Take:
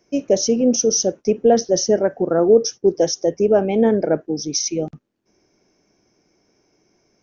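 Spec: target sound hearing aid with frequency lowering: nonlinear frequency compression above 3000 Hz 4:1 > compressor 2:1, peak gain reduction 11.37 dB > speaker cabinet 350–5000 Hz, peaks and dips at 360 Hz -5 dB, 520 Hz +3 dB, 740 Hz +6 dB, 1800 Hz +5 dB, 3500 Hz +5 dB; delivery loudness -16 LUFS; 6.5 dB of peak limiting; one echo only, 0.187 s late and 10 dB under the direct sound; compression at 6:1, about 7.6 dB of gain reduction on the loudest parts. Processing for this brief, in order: compressor 6:1, threshold -17 dBFS; limiter -14.5 dBFS; echo 0.187 s -10 dB; nonlinear frequency compression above 3000 Hz 4:1; compressor 2:1, threshold -38 dBFS; speaker cabinet 350–5000 Hz, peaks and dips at 360 Hz -5 dB, 520 Hz +3 dB, 740 Hz +6 dB, 1800 Hz +5 dB, 3500 Hz +5 dB; gain +15 dB

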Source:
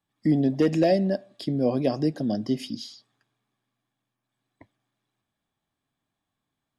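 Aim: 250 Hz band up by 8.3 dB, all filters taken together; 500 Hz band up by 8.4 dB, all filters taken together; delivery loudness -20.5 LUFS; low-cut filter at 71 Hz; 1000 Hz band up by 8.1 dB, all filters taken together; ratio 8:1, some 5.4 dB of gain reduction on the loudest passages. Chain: HPF 71 Hz; bell 250 Hz +8 dB; bell 500 Hz +5.5 dB; bell 1000 Hz +9 dB; compressor 8:1, threshold -14 dBFS; gain +0.5 dB

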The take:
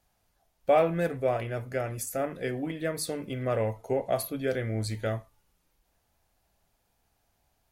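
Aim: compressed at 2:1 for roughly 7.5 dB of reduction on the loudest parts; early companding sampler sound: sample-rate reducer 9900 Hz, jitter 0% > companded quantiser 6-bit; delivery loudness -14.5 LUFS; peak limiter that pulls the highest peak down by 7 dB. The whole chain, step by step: compressor 2:1, threshold -31 dBFS; limiter -25 dBFS; sample-rate reducer 9900 Hz, jitter 0%; companded quantiser 6-bit; gain +21 dB

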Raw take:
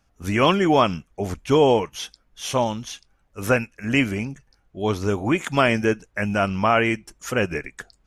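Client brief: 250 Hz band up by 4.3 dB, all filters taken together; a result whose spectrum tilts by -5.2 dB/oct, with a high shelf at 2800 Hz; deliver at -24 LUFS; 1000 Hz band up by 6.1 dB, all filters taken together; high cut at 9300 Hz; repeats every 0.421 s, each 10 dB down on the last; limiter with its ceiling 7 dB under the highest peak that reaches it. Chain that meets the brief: LPF 9300 Hz; bell 250 Hz +5 dB; bell 1000 Hz +8 dB; high shelf 2800 Hz -4 dB; limiter -7.5 dBFS; feedback echo 0.421 s, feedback 32%, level -10 dB; gain -3 dB

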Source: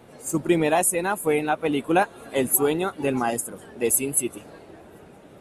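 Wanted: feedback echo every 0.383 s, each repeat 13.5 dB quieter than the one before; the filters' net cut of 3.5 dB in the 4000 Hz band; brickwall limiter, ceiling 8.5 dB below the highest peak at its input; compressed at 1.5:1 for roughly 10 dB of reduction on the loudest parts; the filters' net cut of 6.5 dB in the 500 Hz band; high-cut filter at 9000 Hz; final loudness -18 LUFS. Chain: LPF 9000 Hz; bell 500 Hz -8.5 dB; bell 4000 Hz -4.5 dB; compressor 1.5:1, threshold -47 dBFS; limiter -29 dBFS; feedback echo 0.383 s, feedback 21%, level -13.5 dB; gain +21.5 dB

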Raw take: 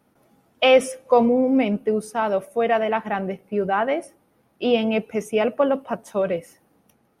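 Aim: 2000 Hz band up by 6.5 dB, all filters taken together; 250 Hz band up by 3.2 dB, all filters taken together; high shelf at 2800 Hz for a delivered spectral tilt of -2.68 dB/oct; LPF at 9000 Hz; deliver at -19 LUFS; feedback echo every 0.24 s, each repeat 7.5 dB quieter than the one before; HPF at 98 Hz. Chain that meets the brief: HPF 98 Hz; LPF 9000 Hz; bell 250 Hz +3.5 dB; bell 2000 Hz +6 dB; high shelf 2800 Hz +5 dB; feedback echo 0.24 s, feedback 42%, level -7.5 dB; gain -0.5 dB

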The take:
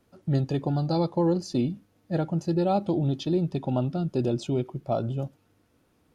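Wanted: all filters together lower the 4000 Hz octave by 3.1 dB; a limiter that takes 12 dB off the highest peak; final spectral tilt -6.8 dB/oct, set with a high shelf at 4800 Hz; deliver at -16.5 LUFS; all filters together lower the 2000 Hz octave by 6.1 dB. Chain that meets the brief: bell 2000 Hz -8.5 dB; bell 4000 Hz -6 dB; high shelf 4800 Hz +9 dB; gain +18 dB; limiter -7.5 dBFS

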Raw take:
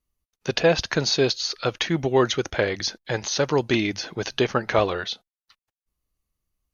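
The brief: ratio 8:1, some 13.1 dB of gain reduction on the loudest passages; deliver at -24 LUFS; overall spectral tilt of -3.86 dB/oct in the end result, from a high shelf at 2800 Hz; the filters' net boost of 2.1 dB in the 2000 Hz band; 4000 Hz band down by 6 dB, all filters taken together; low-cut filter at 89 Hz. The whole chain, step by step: HPF 89 Hz; bell 2000 Hz +5.5 dB; high shelf 2800 Hz -4 dB; bell 4000 Hz -5.5 dB; compressor 8:1, threshold -27 dBFS; gain +8.5 dB

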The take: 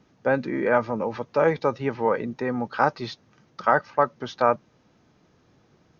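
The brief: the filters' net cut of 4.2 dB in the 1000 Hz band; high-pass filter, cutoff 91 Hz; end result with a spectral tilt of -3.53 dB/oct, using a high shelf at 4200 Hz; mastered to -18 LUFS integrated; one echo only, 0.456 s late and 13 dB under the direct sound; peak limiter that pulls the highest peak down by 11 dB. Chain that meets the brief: HPF 91 Hz; bell 1000 Hz -5 dB; high shelf 4200 Hz -8.5 dB; limiter -19.5 dBFS; echo 0.456 s -13 dB; gain +13.5 dB

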